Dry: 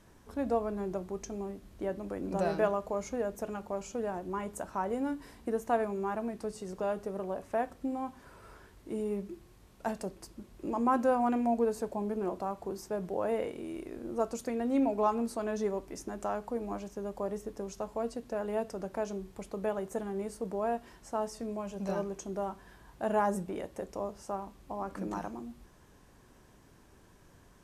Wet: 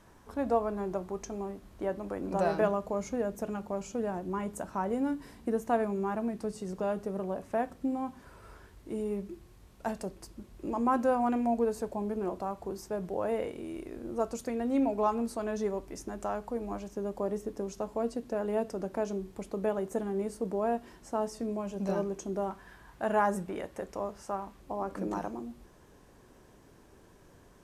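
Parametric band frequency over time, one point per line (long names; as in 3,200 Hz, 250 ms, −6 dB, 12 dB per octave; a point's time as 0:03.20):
parametric band +5 dB 1.5 octaves
990 Hz
from 0:02.61 180 Hz
from 0:08.23 62 Hz
from 0:16.92 290 Hz
from 0:22.51 1,600 Hz
from 0:24.60 450 Hz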